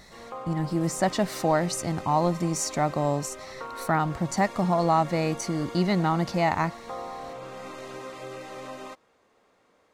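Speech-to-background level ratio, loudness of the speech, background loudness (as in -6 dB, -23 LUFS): 14.0 dB, -26.0 LUFS, -40.0 LUFS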